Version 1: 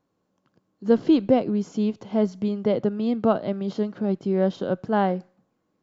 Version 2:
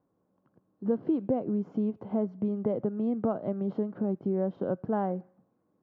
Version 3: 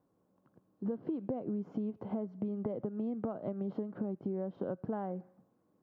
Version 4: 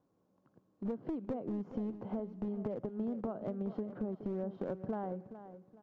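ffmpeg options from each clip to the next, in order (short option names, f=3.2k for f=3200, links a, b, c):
-af "lowpass=1.1k,acompressor=threshold=-27dB:ratio=3,highpass=45"
-af "acompressor=threshold=-33dB:ratio=6"
-af "aresample=16000,aeval=exprs='clip(val(0),-1,0.0188)':c=same,aresample=44100,aecho=1:1:421|842|1263:0.237|0.0735|0.0228,volume=-1dB"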